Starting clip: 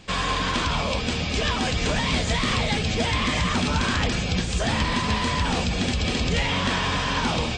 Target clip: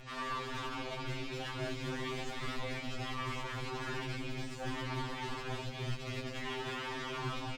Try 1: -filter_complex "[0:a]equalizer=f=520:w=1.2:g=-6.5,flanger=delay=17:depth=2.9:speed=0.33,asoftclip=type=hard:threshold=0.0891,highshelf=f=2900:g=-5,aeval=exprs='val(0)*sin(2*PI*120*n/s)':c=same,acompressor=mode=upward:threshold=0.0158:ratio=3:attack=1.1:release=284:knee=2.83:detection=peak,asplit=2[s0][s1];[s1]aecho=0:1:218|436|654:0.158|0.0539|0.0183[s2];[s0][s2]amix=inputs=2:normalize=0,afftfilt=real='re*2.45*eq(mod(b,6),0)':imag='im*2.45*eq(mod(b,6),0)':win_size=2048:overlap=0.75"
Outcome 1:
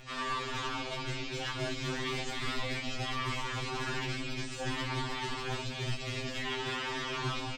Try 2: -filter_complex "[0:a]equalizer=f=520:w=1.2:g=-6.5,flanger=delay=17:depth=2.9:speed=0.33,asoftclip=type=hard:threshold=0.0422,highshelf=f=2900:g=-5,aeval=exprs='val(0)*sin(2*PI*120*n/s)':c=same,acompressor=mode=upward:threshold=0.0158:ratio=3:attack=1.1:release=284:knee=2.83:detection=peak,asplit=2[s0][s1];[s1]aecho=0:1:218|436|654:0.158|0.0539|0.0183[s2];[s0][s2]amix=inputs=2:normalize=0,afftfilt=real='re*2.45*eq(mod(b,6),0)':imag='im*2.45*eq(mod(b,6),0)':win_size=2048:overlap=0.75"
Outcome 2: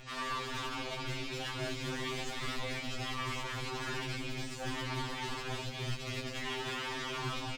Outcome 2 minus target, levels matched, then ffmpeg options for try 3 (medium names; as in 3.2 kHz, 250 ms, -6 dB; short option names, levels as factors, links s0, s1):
8 kHz band +4.0 dB
-filter_complex "[0:a]equalizer=f=520:w=1.2:g=-6.5,flanger=delay=17:depth=2.9:speed=0.33,asoftclip=type=hard:threshold=0.0422,highshelf=f=2900:g=-12,aeval=exprs='val(0)*sin(2*PI*120*n/s)':c=same,acompressor=mode=upward:threshold=0.0158:ratio=3:attack=1.1:release=284:knee=2.83:detection=peak,asplit=2[s0][s1];[s1]aecho=0:1:218|436|654:0.158|0.0539|0.0183[s2];[s0][s2]amix=inputs=2:normalize=0,afftfilt=real='re*2.45*eq(mod(b,6),0)':imag='im*2.45*eq(mod(b,6),0)':win_size=2048:overlap=0.75"